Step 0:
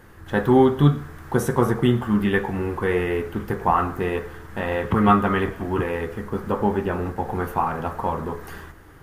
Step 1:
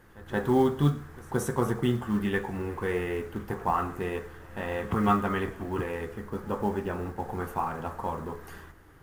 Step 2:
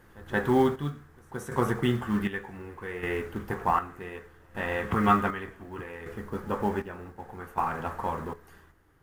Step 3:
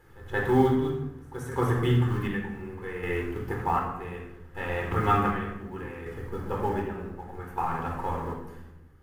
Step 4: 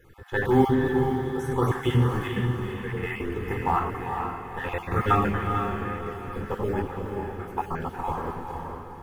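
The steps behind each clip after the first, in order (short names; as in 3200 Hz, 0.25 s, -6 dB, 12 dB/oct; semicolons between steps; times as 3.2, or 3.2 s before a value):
dynamic EQ 7800 Hz, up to +6 dB, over -53 dBFS, Q 1.4; short-mantissa float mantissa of 4-bit; reverse echo 0.175 s -21 dB; gain -7.5 dB
dynamic EQ 1900 Hz, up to +6 dB, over -46 dBFS, Q 0.96; chopper 0.66 Hz, depth 65%, duty 50%
shoebox room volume 3300 m³, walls furnished, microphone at 4.1 m; gain -4 dB
random spectral dropouts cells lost 25%; diffused feedback echo 0.461 s, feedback 41%, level -5 dB; gain +2 dB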